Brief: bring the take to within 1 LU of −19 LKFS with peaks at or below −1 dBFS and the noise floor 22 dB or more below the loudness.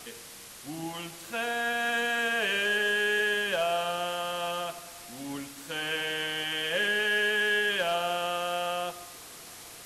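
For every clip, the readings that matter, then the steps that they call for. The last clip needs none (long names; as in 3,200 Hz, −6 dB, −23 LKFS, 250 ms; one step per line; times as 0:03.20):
share of clipped samples 0.1%; peaks flattened at −20.5 dBFS; background noise floor −47 dBFS; target noise floor −51 dBFS; integrated loudness −28.5 LKFS; sample peak −20.5 dBFS; target loudness −19.0 LKFS
→ clipped peaks rebuilt −20.5 dBFS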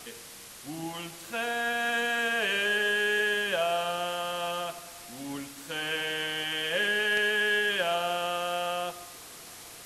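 share of clipped samples 0.0%; background noise floor −47 dBFS; target noise floor −51 dBFS
→ noise reduction from a noise print 6 dB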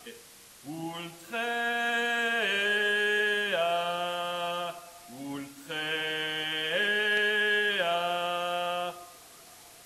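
background noise floor −52 dBFS; integrated loudness −28.0 LKFS; sample peak −12.5 dBFS; target loudness −19.0 LKFS
→ level +9 dB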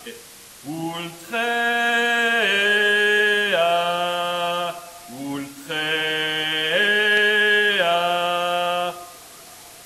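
integrated loudness −19.0 LKFS; sample peak −3.5 dBFS; background noise floor −43 dBFS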